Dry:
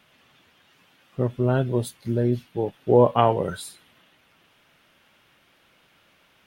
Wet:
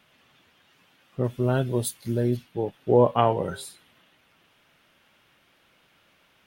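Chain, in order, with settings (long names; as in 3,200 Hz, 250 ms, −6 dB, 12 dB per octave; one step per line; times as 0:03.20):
0:01.24–0:02.37: high-shelf EQ 4,500 Hz +11.5 dB
0:03.14–0:03.65: hum removal 133.1 Hz, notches 7
level −2 dB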